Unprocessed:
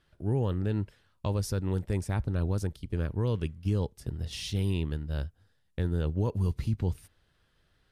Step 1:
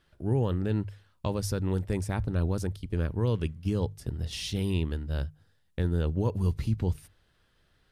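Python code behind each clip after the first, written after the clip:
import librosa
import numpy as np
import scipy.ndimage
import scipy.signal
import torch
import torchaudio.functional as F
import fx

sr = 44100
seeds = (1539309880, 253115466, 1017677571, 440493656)

y = fx.hum_notches(x, sr, base_hz=50, count=3)
y = y * 10.0 ** (2.0 / 20.0)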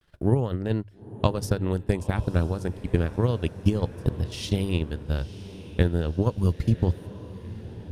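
y = fx.transient(x, sr, attack_db=11, sustain_db=-10)
y = fx.echo_diffused(y, sr, ms=965, feedback_pct=52, wet_db=-15.0)
y = fx.vibrato(y, sr, rate_hz=0.33, depth_cents=39.0)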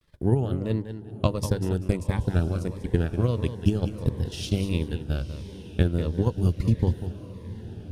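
y = fx.echo_feedback(x, sr, ms=194, feedback_pct=24, wet_db=-10.5)
y = fx.notch_cascade(y, sr, direction='falling', hz=1.5)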